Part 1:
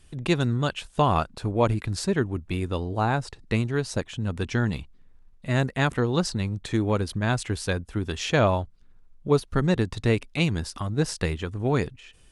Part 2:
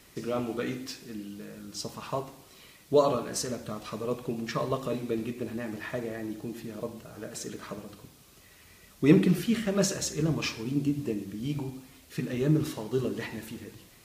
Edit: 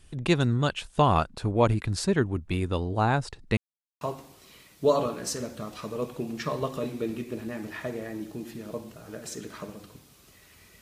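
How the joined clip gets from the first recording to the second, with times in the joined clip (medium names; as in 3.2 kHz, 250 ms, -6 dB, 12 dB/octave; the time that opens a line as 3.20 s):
part 1
3.57–4.01 s: mute
4.01 s: go over to part 2 from 2.10 s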